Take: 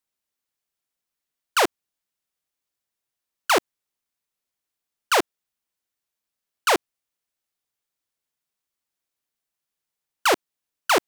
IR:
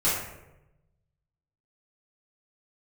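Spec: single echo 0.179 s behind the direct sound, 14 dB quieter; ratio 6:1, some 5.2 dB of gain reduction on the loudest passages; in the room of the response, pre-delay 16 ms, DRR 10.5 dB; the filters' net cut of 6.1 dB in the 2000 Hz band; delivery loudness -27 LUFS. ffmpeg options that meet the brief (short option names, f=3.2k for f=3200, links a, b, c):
-filter_complex "[0:a]equalizer=f=2k:t=o:g=-8.5,acompressor=threshold=-22dB:ratio=6,aecho=1:1:179:0.2,asplit=2[a][b];[1:a]atrim=start_sample=2205,adelay=16[c];[b][c]afir=irnorm=-1:irlink=0,volume=-23dB[d];[a][d]amix=inputs=2:normalize=0,volume=3dB"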